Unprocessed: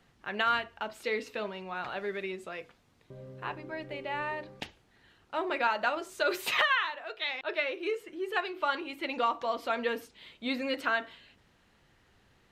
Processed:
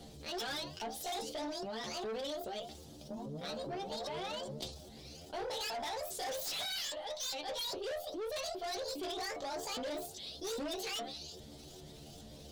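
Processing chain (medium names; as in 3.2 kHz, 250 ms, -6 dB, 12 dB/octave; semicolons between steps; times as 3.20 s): sawtooth pitch modulation +11.5 st, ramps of 407 ms; high-order bell 1.6 kHz -15.5 dB; inharmonic resonator 72 Hz, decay 0.2 s, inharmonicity 0.002; valve stage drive 46 dB, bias 0.3; level flattener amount 50%; trim +9 dB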